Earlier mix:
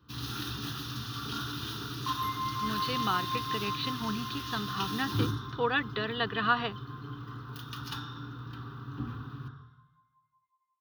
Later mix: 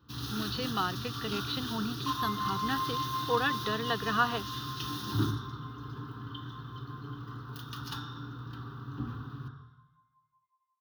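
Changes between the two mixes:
speech: entry -2.30 s; master: add peaking EQ 2.3 kHz -7 dB 0.5 oct

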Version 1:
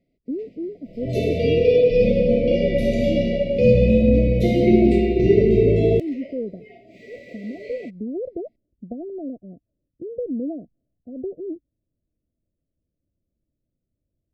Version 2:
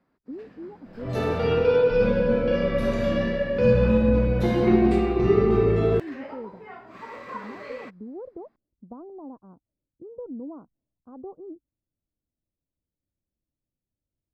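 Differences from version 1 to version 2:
speech -9.5 dB; second sound -4.0 dB; master: remove brick-wall FIR band-stop 720–1900 Hz

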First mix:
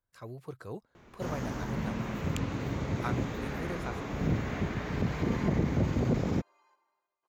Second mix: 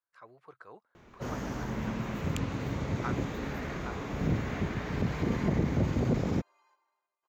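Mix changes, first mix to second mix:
speech: add band-pass filter 1.3 kHz, Q 1.2; second sound: add bass shelf 380 Hz -9 dB

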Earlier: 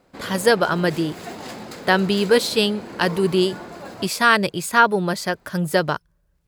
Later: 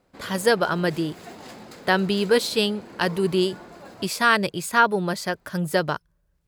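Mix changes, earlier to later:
speech -3.0 dB; background -7.0 dB

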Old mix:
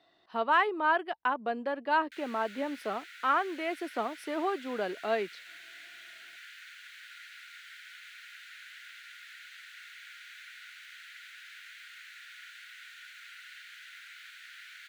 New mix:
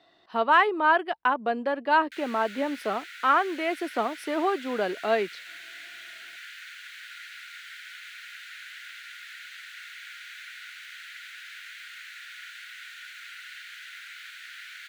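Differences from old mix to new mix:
speech +5.5 dB; background +6.0 dB

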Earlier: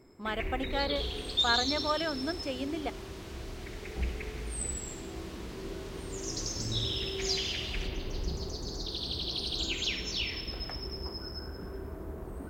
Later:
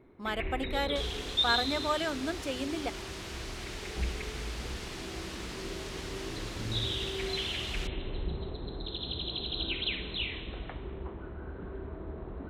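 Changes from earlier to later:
speech: remove distance through air 66 m; first sound: add brick-wall FIR low-pass 4.2 kHz; second sound +7.5 dB

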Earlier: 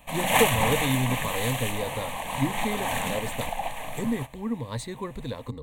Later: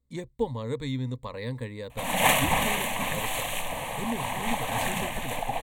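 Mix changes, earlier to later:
speech -5.0 dB; background: entry +1.90 s

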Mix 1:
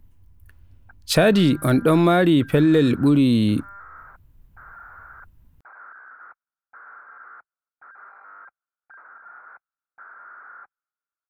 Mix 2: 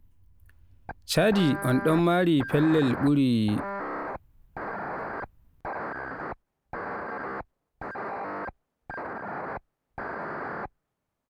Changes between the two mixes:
speech -6.0 dB; background: remove band-pass filter 1.4 kHz, Q 8.9

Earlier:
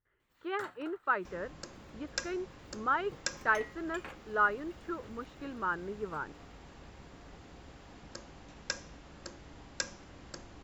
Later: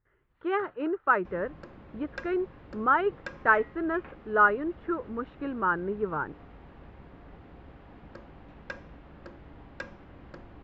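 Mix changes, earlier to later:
speech +9.5 dB; second sound +3.5 dB; master: add distance through air 480 m

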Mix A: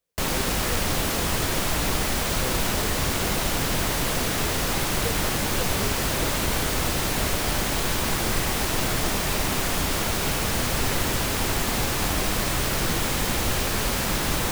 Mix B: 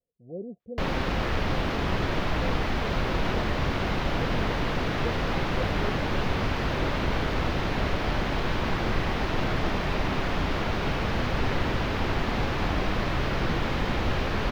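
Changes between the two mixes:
background: entry +0.60 s; master: add distance through air 280 m

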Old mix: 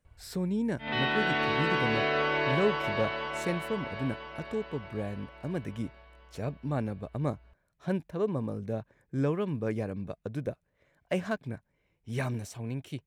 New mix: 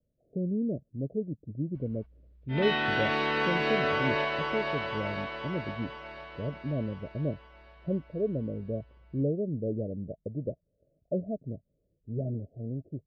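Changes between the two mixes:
speech: add steep low-pass 660 Hz 96 dB/octave; background: entry +1.70 s

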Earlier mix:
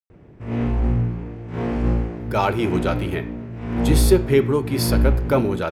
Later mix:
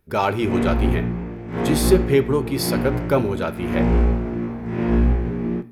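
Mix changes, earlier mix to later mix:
speech: entry -2.20 s; background: send on

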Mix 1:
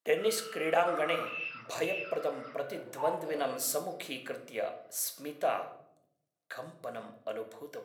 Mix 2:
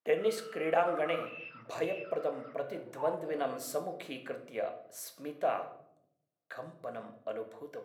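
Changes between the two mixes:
background: send -7.5 dB; master: add treble shelf 3 kHz -11.5 dB

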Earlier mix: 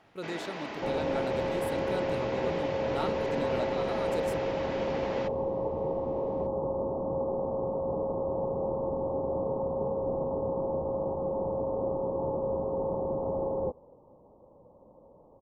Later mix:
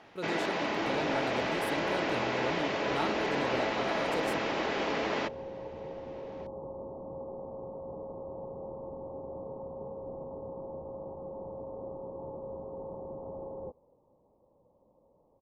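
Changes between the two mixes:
first sound +7.0 dB; second sound -10.5 dB

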